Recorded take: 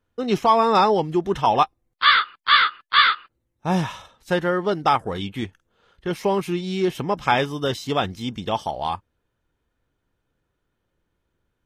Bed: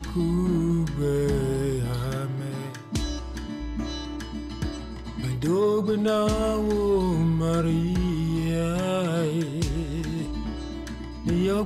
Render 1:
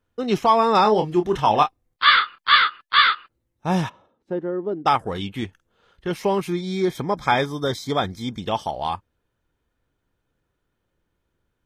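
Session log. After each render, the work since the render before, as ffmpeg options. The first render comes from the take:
-filter_complex "[0:a]asettb=1/sr,asplit=3[s0][s1][s2];[s0]atrim=end=0.824[s3];[s1]atrim=start=0.82:end=2.58,asetpts=PTS-STARTPTS,afade=t=in:d=0.004:c=qsin,afade=t=out:st=1.756:d=0.004:c=qsin,asplit=2[s4][s5];[s5]adelay=28,volume=0.447[s6];[s4][s6]amix=inputs=2:normalize=0,atrim=end_sample=77616[s7];[s2]atrim=start=2.576[s8];[s3][s7]acrossfade=d=0.004:c1=hsin:c2=qsin[s9];[s9][s8]acrossfade=d=0.004:c1=qsin:c2=hsin,asplit=3[s10][s11][s12];[s10]afade=t=out:st=3.88:d=0.02[s13];[s11]bandpass=f=320:t=q:w=1.7,afade=t=in:st=3.88:d=0.02,afade=t=out:st=4.85:d=0.02[s14];[s12]afade=t=in:st=4.85:d=0.02[s15];[s13][s14][s15]amix=inputs=3:normalize=0,asettb=1/sr,asplit=3[s16][s17][s18];[s16]atrim=end=6.484[s19];[s17]atrim=start=6.48:end=8.4,asetpts=PTS-STARTPTS,afade=t=in:d=0.004:c=qsin,afade=t=out:st=1.916:d=0.004:c=qsin,asuperstop=centerf=2800:order=20:qfactor=4.5[s20];[s18]atrim=start=8.396[s21];[s19][s20]acrossfade=d=0.004:c1=hsin:c2=qsin[s22];[s22][s21]acrossfade=d=0.004:c1=qsin:c2=hsin"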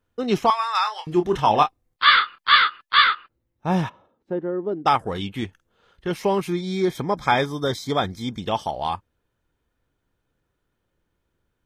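-filter_complex "[0:a]asettb=1/sr,asplit=3[s0][s1][s2];[s0]atrim=end=0.504[s3];[s1]atrim=start=0.5:end=1.07,asetpts=PTS-STARTPTS,afade=t=in:d=0.004:c=qsin,afade=t=out:st=0.566:d=0.004:c=qsin,highpass=f=1100:w=0.5412,highpass=f=1100:w=1.3066[s4];[s2]atrim=start=1.066[s5];[s3][s4]acrossfade=d=0.004:c1=hsin:c2=qsin[s6];[s6][s5]acrossfade=d=0.004:c1=qsin:c2=hsin,asettb=1/sr,asplit=3[s7][s8][s9];[s7]atrim=end=3.044[s10];[s8]atrim=start=3.04:end=4.67,asetpts=PTS-STARTPTS,afade=t=in:d=0.004:c=qsin,afade=t=out:st=1.626:d=0.004:c=qsin,equalizer=f=8200:w=0.5:g=-7[s11];[s9]atrim=start=4.666[s12];[s10][s11]acrossfade=d=0.004:c1=hsin:c2=qsin[s13];[s13][s12]acrossfade=d=0.004:c1=qsin:c2=hsin"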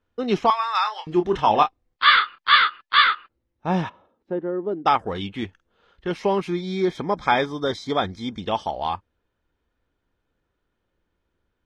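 -af "lowpass=5000,equalizer=f=130:t=o:w=0.48:g=-7.5"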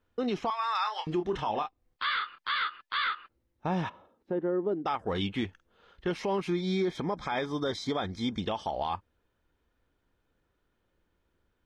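-af "acompressor=threshold=0.0562:ratio=4,alimiter=limit=0.0891:level=0:latency=1:release=49"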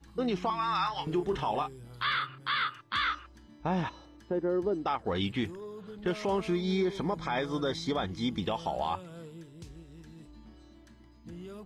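-filter_complex "[1:a]volume=0.0891[s0];[0:a][s0]amix=inputs=2:normalize=0"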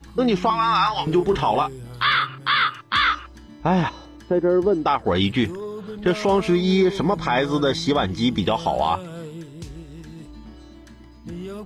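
-af "volume=3.55"

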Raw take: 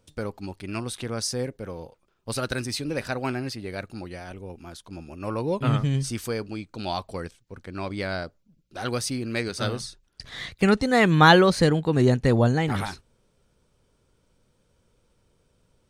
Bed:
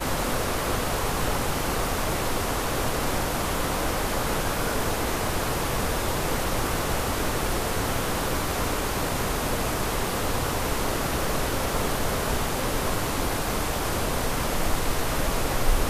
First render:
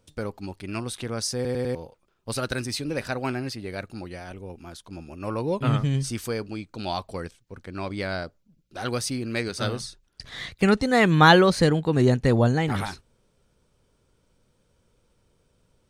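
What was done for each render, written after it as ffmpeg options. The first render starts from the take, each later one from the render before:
-filter_complex "[0:a]asplit=5[s0][s1][s2][s3][s4];[s0]atrim=end=1.452[s5];[s1]atrim=start=1.348:end=1.452[s6];[s2]atrim=start=1.348:end=1.452[s7];[s3]atrim=start=1.348:end=1.452[s8];[s4]atrim=start=1.748[s9];[s5][s6]acrossfade=d=0.004:c1=hsin:c2=hsin[s10];[s10][s7]acrossfade=d=0.004:c1=hsin:c2=hsin[s11];[s11][s8]acrossfade=d=0.004:c1=hsin:c2=hsin[s12];[s12][s9]acrossfade=d=0.004:c1=hsin:c2=hsin"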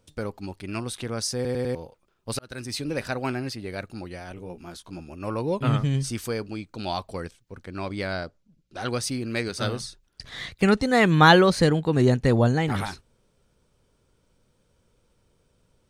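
-filter_complex "[0:a]asettb=1/sr,asplit=3[s0][s1][s2];[s0]atrim=end=4.354[s3];[s1]atrim=start=4.35:end=5,asetpts=PTS-STARTPTS,afade=t=in:d=0.004:c=qsin,afade=t=out:st=0.646:d=0.004:c=qsin,asplit=2[s4][s5];[s5]adelay=17,volume=0.531[s6];[s4][s6]amix=inputs=2:normalize=0,atrim=end_sample=28665[s7];[s2]atrim=start=4.996[s8];[s3][s7]acrossfade=d=0.004:c1=hsin:c2=qsin[s9];[s9][s8]acrossfade=d=0.004:c1=qsin:c2=hsin,asettb=1/sr,asplit=3[s10][s11][s12];[s10]atrim=end=8.134[s13];[s11]atrim=start=8.13:end=9.03,asetpts=PTS-STARTPTS,afade=t=in:d=0.004:c=qsin,afade=t=out:st=0.896:d=0.004:c=qsin,lowpass=9000[s14];[s12]atrim=start=9.026[s15];[s13][s14]acrossfade=d=0.004:c1=hsin:c2=qsin[s16];[s16][s15]acrossfade=d=0.004:c1=qsin:c2=hsin,asplit=2[s17][s18];[s17]atrim=end=2.39,asetpts=PTS-STARTPTS,afade=t=out:st=2.386:d=0.004:c=hsin[s19];[s18]atrim=start=2.39,asetpts=PTS-STARTPTS,afade=t=in:d=0.42[s20];[s19][s20]concat=n=2:v=0:a=1"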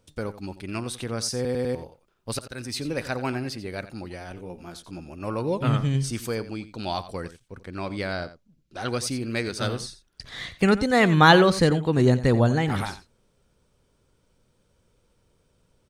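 -af "aecho=1:1:88:0.188"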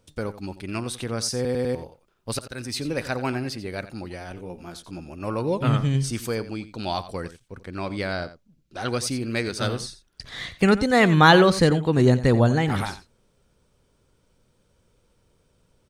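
-af "volume=1.19,alimiter=limit=0.708:level=0:latency=1"

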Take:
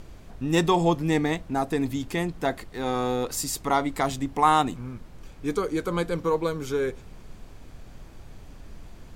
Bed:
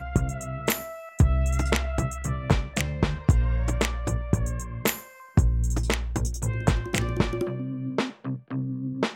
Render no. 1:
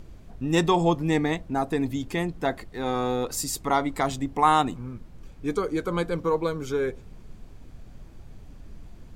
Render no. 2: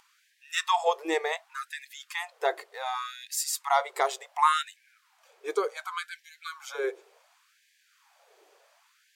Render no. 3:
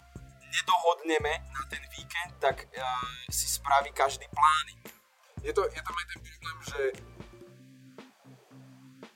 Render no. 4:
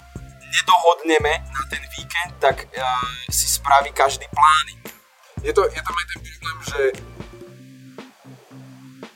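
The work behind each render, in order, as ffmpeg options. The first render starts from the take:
-af "afftdn=nr=6:nf=-46"
-af "afftfilt=real='re*gte(b*sr/1024,340*pow(1600/340,0.5+0.5*sin(2*PI*0.68*pts/sr)))':imag='im*gte(b*sr/1024,340*pow(1600/340,0.5+0.5*sin(2*PI*0.68*pts/sr)))':win_size=1024:overlap=0.75"
-filter_complex "[1:a]volume=0.0708[s0];[0:a][s0]amix=inputs=2:normalize=0"
-af "volume=3.55,alimiter=limit=0.794:level=0:latency=1"

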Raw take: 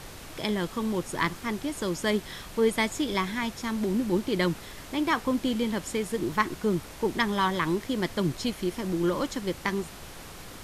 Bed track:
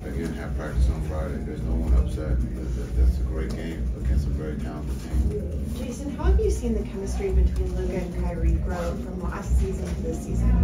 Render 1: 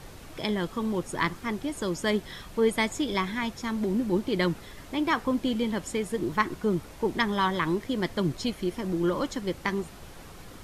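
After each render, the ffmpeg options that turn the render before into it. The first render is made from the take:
-af "afftdn=nr=6:nf=-44"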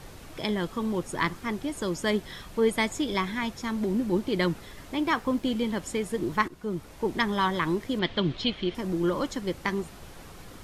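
-filter_complex "[0:a]asettb=1/sr,asplit=3[s0][s1][s2];[s0]atrim=end=4.974[s3];[s1]atrim=start=4.97:end=5.82,asetpts=PTS-STARTPTS,afade=t=in:d=0.004:c=qsin,afade=t=out:st=0.846:d=0.004:c=qsin,aeval=exprs='sgn(val(0))*max(abs(val(0))-0.00158,0)':c=same[s4];[s2]atrim=start=5.816[s5];[s3][s4]acrossfade=d=0.004:c1=hsin:c2=qsin[s6];[s6][s5]acrossfade=d=0.004:c1=qsin:c2=hsin,asettb=1/sr,asplit=3[s7][s8][s9];[s7]atrim=end=7.994[s10];[s8]atrim=start=7.99:end=8.75,asetpts=PTS-STARTPTS,afade=t=in:d=0.004:c=qsin,afade=t=out:st=0.756:d=0.004:c=qsin,lowpass=f=3400:t=q:w=3.1[s11];[s9]atrim=start=8.746[s12];[s10][s11]acrossfade=d=0.004:c1=hsin:c2=qsin[s13];[s13][s12]acrossfade=d=0.004:c1=qsin:c2=hsin,asplit=2[s14][s15];[s14]atrim=end=6.48,asetpts=PTS-STARTPTS,afade=t=out:st=6.476:d=0.004:c=hsin:silence=0.211349[s16];[s15]atrim=start=6.48,asetpts=PTS-STARTPTS,afade=t=in:d=0.84:c=qsin:silence=0.211349[s17];[s16][s17]concat=n=2:v=0:a=1"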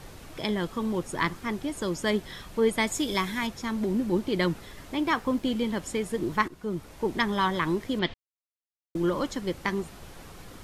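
-filter_complex "[0:a]asettb=1/sr,asplit=3[s0][s1][s2];[s0]atrim=end=2.874[s3];[s1]atrim=start=2.87:end=3.47,asetpts=PTS-STARTPTS,afade=t=in:d=0.004:c=qsin,afade=t=out:st=0.596:d=0.004:c=qsin,aemphasis=mode=production:type=cd[s4];[s2]atrim=start=3.466[s5];[s3][s4]acrossfade=d=0.004:c1=hsin:c2=qsin[s6];[s6][s5]acrossfade=d=0.004:c1=qsin:c2=hsin,asplit=3[s7][s8][s9];[s7]atrim=end=8.14,asetpts=PTS-STARTPTS,afade=t=out:st=8.136:d=0.004:c=hsin[s10];[s8]atrim=start=8.14:end=8.95,asetpts=PTS-STARTPTS,volume=0[s11];[s9]atrim=start=8.95,asetpts=PTS-STARTPTS,afade=t=in:d=0.004:c=hsin[s12];[s10][s11][s12]concat=n=3:v=0:a=1"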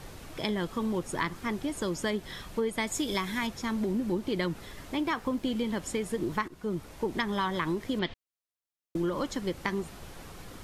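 -af "acompressor=threshold=0.0501:ratio=6"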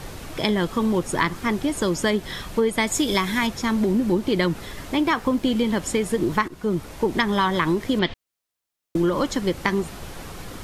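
-af "volume=2.82"

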